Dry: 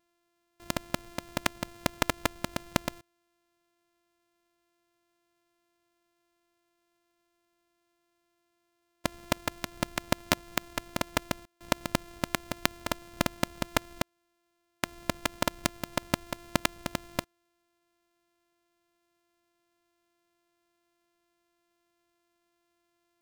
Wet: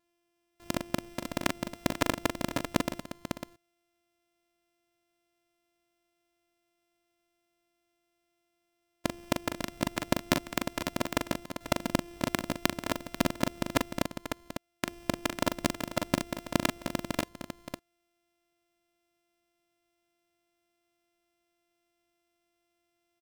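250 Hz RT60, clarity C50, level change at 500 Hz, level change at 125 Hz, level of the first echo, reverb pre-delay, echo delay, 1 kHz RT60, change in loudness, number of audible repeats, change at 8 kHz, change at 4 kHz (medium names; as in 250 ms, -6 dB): no reverb, no reverb, +1.5 dB, +0.5 dB, -6.5 dB, no reverb, 41 ms, no reverb, 0.0 dB, 3, -1.5 dB, -1.5 dB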